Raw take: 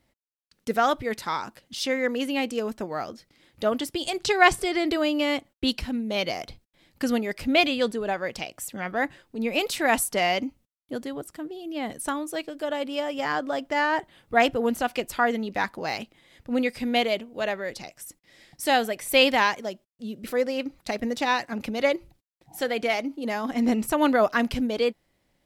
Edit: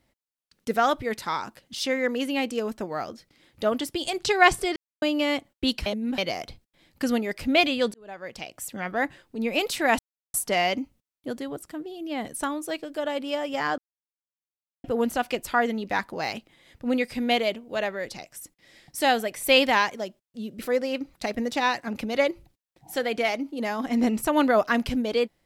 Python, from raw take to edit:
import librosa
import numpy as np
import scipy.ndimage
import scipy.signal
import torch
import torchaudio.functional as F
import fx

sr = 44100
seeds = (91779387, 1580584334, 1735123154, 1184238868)

y = fx.edit(x, sr, fx.silence(start_s=4.76, length_s=0.26),
    fx.reverse_span(start_s=5.86, length_s=0.32),
    fx.fade_in_span(start_s=7.94, length_s=0.75),
    fx.insert_silence(at_s=9.99, length_s=0.35),
    fx.silence(start_s=13.43, length_s=1.06), tone=tone)